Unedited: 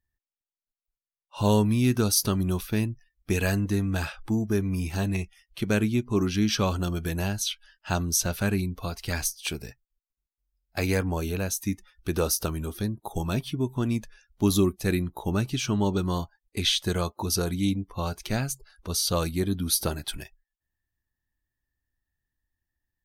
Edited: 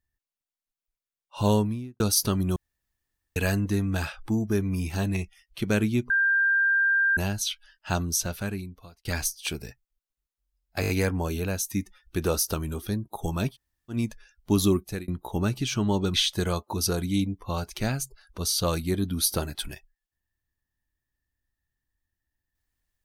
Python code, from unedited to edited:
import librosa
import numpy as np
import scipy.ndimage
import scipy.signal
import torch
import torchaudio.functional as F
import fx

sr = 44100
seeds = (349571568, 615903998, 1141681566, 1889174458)

y = fx.studio_fade_out(x, sr, start_s=1.44, length_s=0.56)
y = fx.edit(y, sr, fx.room_tone_fill(start_s=2.56, length_s=0.8),
    fx.bleep(start_s=6.1, length_s=1.07, hz=1590.0, db=-19.0),
    fx.fade_out_span(start_s=7.95, length_s=1.1),
    fx.stutter(start_s=10.81, slice_s=0.02, count=5),
    fx.room_tone_fill(start_s=13.44, length_s=0.41, crossfade_s=0.1),
    fx.fade_out_span(start_s=14.73, length_s=0.27),
    fx.cut(start_s=16.06, length_s=0.57), tone=tone)